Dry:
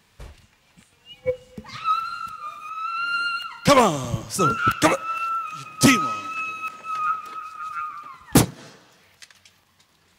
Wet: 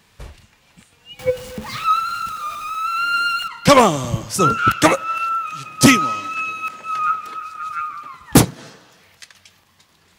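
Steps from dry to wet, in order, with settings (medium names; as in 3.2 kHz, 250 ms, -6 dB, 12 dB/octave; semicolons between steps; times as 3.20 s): 1.19–3.48 s: jump at every zero crossing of -35 dBFS; trim +4.5 dB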